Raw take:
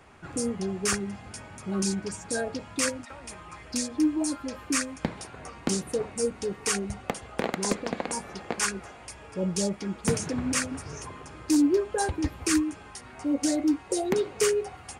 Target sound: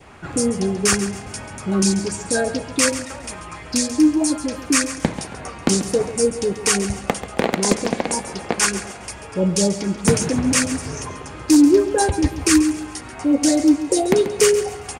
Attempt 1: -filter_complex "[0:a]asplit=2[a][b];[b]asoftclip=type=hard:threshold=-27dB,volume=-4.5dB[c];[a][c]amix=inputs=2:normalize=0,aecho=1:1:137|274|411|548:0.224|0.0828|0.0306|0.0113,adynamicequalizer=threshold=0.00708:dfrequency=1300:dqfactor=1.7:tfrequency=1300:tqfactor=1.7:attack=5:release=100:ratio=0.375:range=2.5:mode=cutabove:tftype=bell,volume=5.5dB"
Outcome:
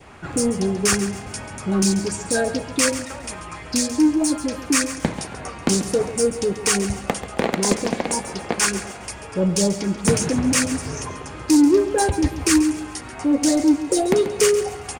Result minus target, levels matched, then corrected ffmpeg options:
hard clip: distortion +30 dB
-filter_complex "[0:a]asplit=2[a][b];[b]asoftclip=type=hard:threshold=-16.5dB,volume=-4.5dB[c];[a][c]amix=inputs=2:normalize=0,aecho=1:1:137|274|411|548:0.224|0.0828|0.0306|0.0113,adynamicequalizer=threshold=0.00708:dfrequency=1300:dqfactor=1.7:tfrequency=1300:tqfactor=1.7:attack=5:release=100:ratio=0.375:range=2.5:mode=cutabove:tftype=bell,volume=5.5dB"

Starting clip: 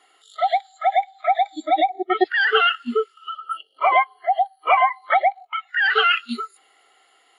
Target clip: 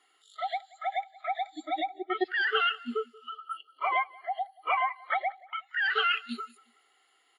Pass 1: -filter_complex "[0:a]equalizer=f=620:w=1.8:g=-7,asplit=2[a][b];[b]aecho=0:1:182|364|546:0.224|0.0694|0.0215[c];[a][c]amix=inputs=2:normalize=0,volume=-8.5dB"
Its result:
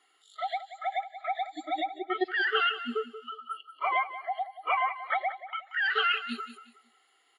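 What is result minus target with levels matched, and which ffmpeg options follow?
echo-to-direct +10.5 dB
-filter_complex "[0:a]equalizer=f=620:w=1.8:g=-7,asplit=2[a][b];[b]aecho=0:1:182|364:0.0668|0.0207[c];[a][c]amix=inputs=2:normalize=0,volume=-8.5dB"

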